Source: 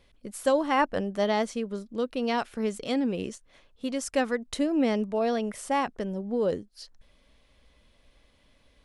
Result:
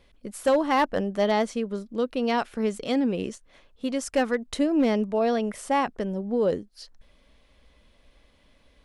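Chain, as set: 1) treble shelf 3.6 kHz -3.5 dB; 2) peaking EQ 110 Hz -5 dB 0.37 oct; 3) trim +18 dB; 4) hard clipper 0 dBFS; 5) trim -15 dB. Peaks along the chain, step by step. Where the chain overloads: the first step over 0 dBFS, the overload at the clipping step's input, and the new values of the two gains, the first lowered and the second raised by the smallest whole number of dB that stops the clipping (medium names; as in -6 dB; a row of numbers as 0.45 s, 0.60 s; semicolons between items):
-11.5 dBFS, -11.5 dBFS, +6.5 dBFS, 0.0 dBFS, -15.0 dBFS; step 3, 6.5 dB; step 3 +11 dB, step 5 -8 dB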